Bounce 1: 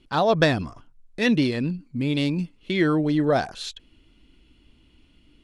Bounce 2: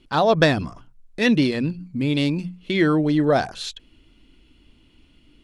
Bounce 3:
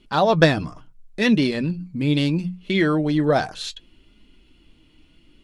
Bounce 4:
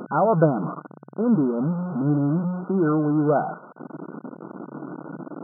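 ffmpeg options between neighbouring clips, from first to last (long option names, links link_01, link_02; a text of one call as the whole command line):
ffmpeg -i in.wav -af "bandreject=frequency=60:width_type=h:width=6,bandreject=frequency=120:width_type=h:width=6,bandreject=frequency=180:width_type=h:width=6,volume=2.5dB" out.wav
ffmpeg -i in.wav -af "flanger=delay=4.8:depth=1.7:regen=60:speed=0.71:shape=sinusoidal,volume=4.5dB" out.wav
ffmpeg -i in.wav -af "aeval=exprs='val(0)+0.5*0.0944*sgn(val(0))':channel_layout=same,afftfilt=real='re*between(b*sr/4096,130,1500)':imag='im*between(b*sr/4096,130,1500)':win_size=4096:overlap=0.75,volume=-3.5dB" out.wav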